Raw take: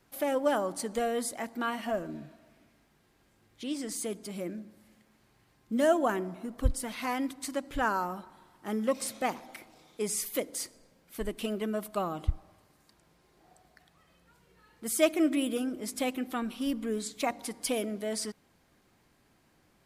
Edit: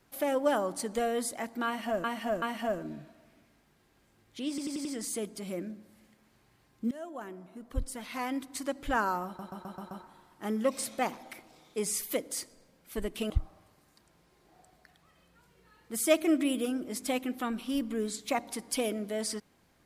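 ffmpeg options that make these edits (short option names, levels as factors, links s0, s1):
-filter_complex "[0:a]asplit=14[s0][s1][s2][s3][s4][s5][s6][s7][s8][s9][s10][s11][s12][s13];[s0]atrim=end=2.042[s14];[s1]atrim=start=1.658:end=2.042[s15];[s2]atrim=start=1.658:end=3.822[s16];[s3]atrim=start=3.728:end=3.822[s17];[s4]atrim=start=3.728:end=3.822[s18];[s5]atrim=start=3.728:end=3.822[s19];[s6]atrim=start=3.728:end=5.79,asetpts=PTS-STARTPTS,afade=t=out:st=2.058:d=0.004:c=hsin:silence=0.0707946[s20];[s7]atrim=start=5.79:end=8.272,asetpts=PTS-STARTPTS,afade=t=in:d=1.83:silence=0.0707946[s21];[s8]atrim=start=8.138:end=8.272[s22];[s9]atrim=start=8.138:end=8.272[s23];[s10]atrim=start=8.138:end=8.272[s24];[s11]atrim=start=8.138:end=8.272[s25];[s12]atrim=start=8.138:end=11.532[s26];[s13]atrim=start=12.218[s27];[s14][s15]acrossfade=d=0.004:c1=hsin:c2=hsin[s28];[s28][s16]acrossfade=d=0.004:c1=hsin:c2=hsin[s29];[s29][s17]acrossfade=d=0.004:c1=hsin:c2=hsin[s30];[s30][s18]acrossfade=d=0.004:c1=hsin:c2=hsin[s31];[s31][s19]acrossfade=d=0.004:c1=hsin:c2=hsin[s32];[s20][s21]concat=n=2:v=0:a=1[s33];[s32][s33]acrossfade=d=0.004:c1=hsin:c2=hsin[s34];[s34][s22]acrossfade=d=0.004:c1=hsin:c2=hsin[s35];[s35][s23]acrossfade=d=0.004:c1=hsin:c2=hsin[s36];[s36][s24]acrossfade=d=0.004:c1=hsin:c2=hsin[s37];[s37][s25]acrossfade=d=0.004:c1=hsin:c2=hsin[s38];[s38][s26]acrossfade=d=0.004:c1=hsin:c2=hsin[s39];[s39][s27]acrossfade=d=0.004:c1=hsin:c2=hsin"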